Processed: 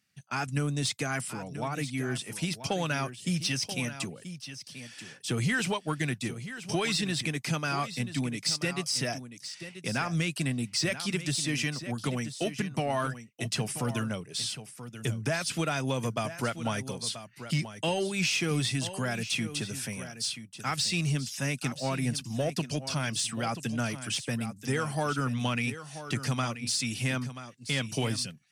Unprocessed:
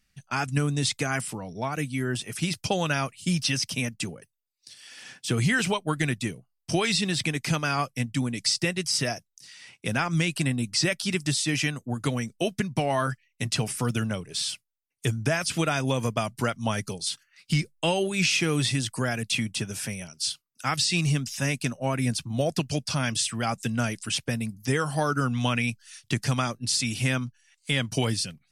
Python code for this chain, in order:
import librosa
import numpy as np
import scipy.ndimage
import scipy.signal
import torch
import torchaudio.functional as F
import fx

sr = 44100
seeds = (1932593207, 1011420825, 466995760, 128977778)

p1 = scipy.signal.sosfilt(scipy.signal.butter(4, 100.0, 'highpass', fs=sr, output='sos'), x)
p2 = 10.0 ** (-23.0 / 20.0) * np.tanh(p1 / 10.0 ** (-23.0 / 20.0))
p3 = p1 + (p2 * 10.0 ** (-3.0 / 20.0))
p4 = p3 + 10.0 ** (-12.0 / 20.0) * np.pad(p3, (int(983 * sr / 1000.0), 0))[:len(p3)]
y = p4 * 10.0 ** (-7.5 / 20.0)